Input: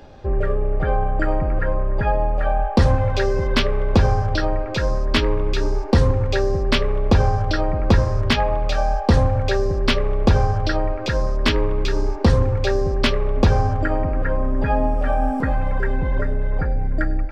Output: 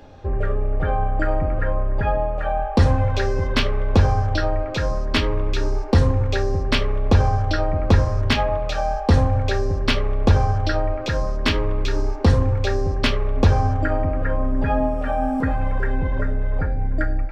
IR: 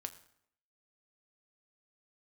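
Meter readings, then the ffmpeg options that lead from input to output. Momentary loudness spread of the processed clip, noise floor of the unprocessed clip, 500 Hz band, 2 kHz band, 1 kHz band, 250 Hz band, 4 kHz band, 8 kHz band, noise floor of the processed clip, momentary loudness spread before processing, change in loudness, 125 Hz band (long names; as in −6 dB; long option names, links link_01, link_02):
6 LU, −25 dBFS, −2.0 dB, −1.0 dB, −1.0 dB, −1.0 dB, −1.0 dB, can't be measured, −26 dBFS, 5 LU, −1.0 dB, +0.5 dB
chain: -filter_complex "[0:a]bandreject=frequency=4800:width=29[link_01];[1:a]atrim=start_sample=2205,atrim=end_sample=3528[link_02];[link_01][link_02]afir=irnorm=-1:irlink=0,volume=2dB"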